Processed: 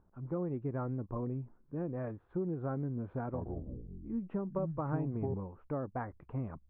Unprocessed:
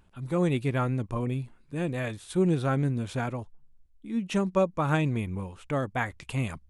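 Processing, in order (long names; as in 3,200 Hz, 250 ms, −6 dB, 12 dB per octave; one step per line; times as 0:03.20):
low-pass filter 1,300 Hz 24 dB per octave
parametric band 360 Hz +3.5 dB 1.6 octaves
downward compressor, threshold −25 dBFS, peak gain reduction 8.5 dB
0:03.22–0:05.34: delay with pitch and tempo change per echo 116 ms, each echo −6 semitones, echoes 3
level −7 dB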